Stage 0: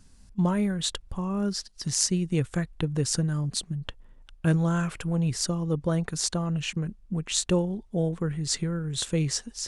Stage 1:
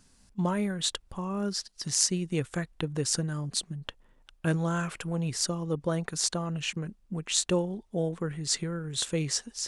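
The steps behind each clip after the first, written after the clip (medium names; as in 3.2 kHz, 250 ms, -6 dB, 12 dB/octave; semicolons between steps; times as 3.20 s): bass shelf 160 Hz -11 dB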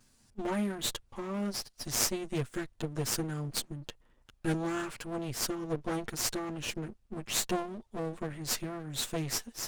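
comb filter that takes the minimum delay 8.6 ms; trim -2 dB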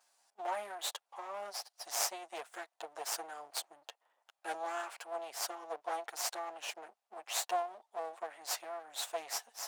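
ladder high-pass 650 Hz, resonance 60%; trim +5.5 dB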